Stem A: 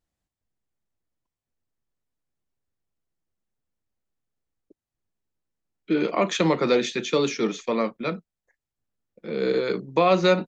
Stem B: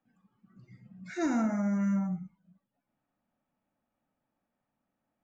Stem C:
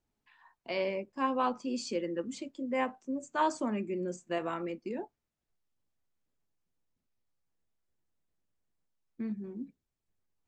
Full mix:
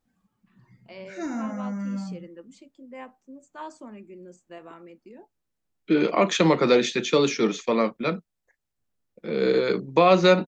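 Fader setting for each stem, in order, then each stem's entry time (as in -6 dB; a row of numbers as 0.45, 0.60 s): +2.0, -2.0, -9.5 dB; 0.00, 0.00, 0.20 s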